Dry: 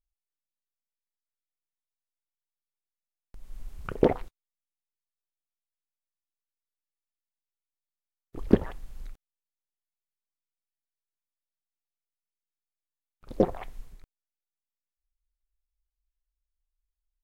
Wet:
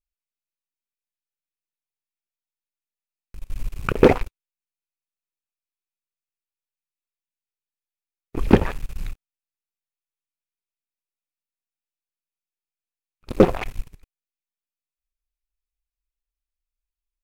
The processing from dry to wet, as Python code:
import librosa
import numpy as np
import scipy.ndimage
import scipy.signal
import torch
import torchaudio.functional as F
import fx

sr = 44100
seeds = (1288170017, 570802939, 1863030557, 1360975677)

y = fx.peak_eq(x, sr, hz=700.0, db=-4.0, octaves=0.7)
y = fx.leveller(y, sr, passes=3)
y = fx.peak_eq(y, sr, hz=2500.0, db=8.0, octaves=0.27)
y = y * librosa.db_to_amplitude(1.5)